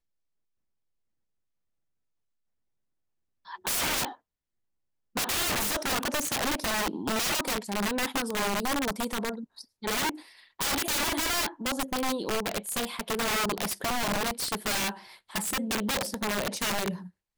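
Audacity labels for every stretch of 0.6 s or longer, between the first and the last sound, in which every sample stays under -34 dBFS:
4.110000	5.160000	silence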